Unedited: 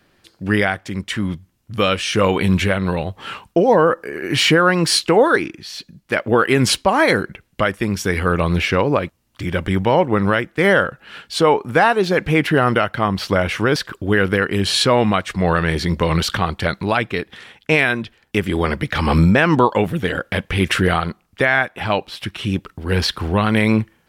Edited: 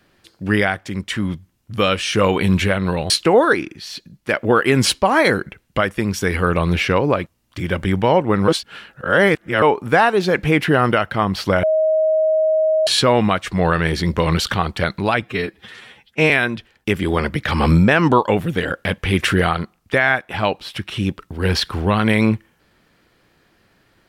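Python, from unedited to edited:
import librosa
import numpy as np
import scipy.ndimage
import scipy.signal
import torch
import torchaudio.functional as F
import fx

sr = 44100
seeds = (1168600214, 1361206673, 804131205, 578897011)

y = fx.edit(x, sr, fx.cut(start_s=3.1, length_s=1.83),
    fx.reverse_span(start_s=10.31, length_s=1.14),
    fx.bleep(start_s=13.46, length_s=1.24, hz=630.0, db=-13.0),
    fx.stretch_span(start_s=17.05, length_s=0.72, factor=1.5), tone=tone)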